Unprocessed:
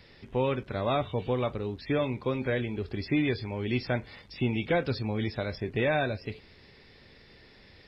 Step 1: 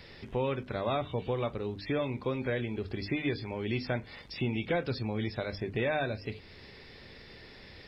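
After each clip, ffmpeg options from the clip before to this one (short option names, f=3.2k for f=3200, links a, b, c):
-af "bandreject=f=50:t=h:w=6,bandreject=f=100:t=h:w=6,bandreject=f=150:t=h:w=6,bandreject=f=200:t=h:w=6,bandreject=f=250:t=h:w=6,bandreject=f=300:t=h:w=6,acompressor=threshold=-46dB:ratio=1.5,volume=4.5dB"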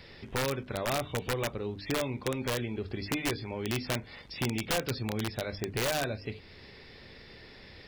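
-af "aeval=exprs='(mod(14.1*val(0)+1,2)-1)/14.1':c=same"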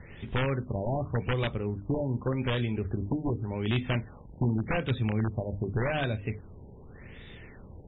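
-af "bass=f=250:g=8,treble=f=4k:g=2,crystalizer=i=2:c=0,afftfilt=real='re*lt(b*sr/1024,960*pow(3900/960,0.5+0.5*sin(2*PI*0.86*pts/sr)))':imag='im*lt(b*sr/1024,960*pow(3900/960,0.5+0.5*sin(2*PI*0.86*pts/sr)))':win_size=1024:overlap=0.75"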